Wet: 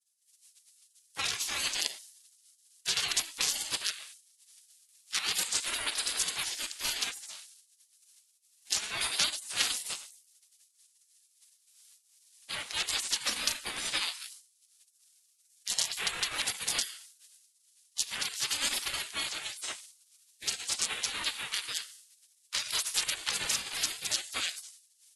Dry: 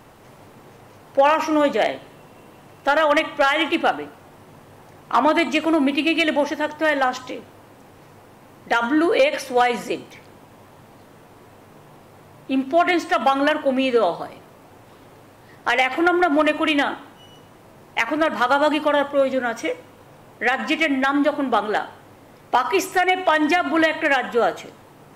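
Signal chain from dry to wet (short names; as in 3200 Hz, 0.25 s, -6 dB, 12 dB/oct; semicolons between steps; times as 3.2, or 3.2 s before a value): de-hum 64.57 Hz, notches 15; spectral gate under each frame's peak -30 dB weak; expander -58 dBFS; steep low-pass 11000 Hz 96 dB/oct; tilt +4 dB/oct; ring modulator with a swept carrier 600 Hz, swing 25%, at 0.59 Hz; gain +5 dB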